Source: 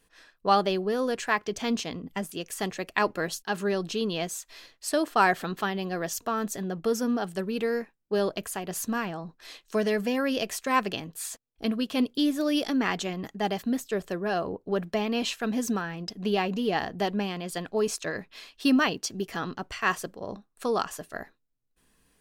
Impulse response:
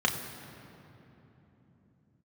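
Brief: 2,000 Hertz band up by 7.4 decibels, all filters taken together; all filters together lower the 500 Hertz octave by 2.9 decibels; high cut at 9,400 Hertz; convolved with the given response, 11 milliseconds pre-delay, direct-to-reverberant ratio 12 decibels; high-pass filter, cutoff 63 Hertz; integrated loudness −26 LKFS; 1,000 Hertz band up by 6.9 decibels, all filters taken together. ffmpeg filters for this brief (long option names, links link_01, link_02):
-filter_complex "[0:a]highpass=63,lowpass=9400,equalizer=frequency=500:width_type=o:gain=-6.5,equalizer=frequency=1000:width_type=o:gain=9,equalizer=frequency=2000:width_type=o:gain=6.5,asplit=2[link_01][link_02];[1:a]atrim=start_sample=2205,adelay=11[link_03];[link_02][link_03]afir=irnorm=-1:irlink=0,volume=-23dB[link_04];[link_01][link_04]amix=inputs=2:normalize=0,volume=-0.5dB"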